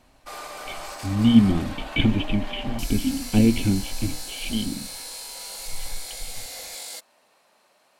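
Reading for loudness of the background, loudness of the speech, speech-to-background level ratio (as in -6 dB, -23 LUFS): -35.0 LUFS, -23.0 LUFS, 12.0 dB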